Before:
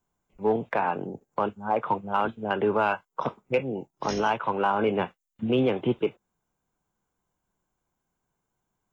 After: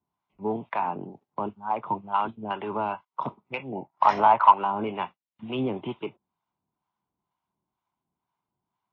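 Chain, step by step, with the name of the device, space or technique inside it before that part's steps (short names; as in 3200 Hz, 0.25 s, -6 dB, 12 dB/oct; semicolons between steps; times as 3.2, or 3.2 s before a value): 3.72–4.54 band shelf 1100 Hz +12.5 dB 2.3 oct; guitar amplifier with harmonic tremolo (harmonic tremolo 2.1 Hz, depth 70%, crossover 670 Hz; soft clip -8 dBFS, distortion -19 dB; speaker cabinet 88–4300 Hz, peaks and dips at 490 Hz -9 dB, 970 Hz +7 dB, 1600 Hz -7 dB)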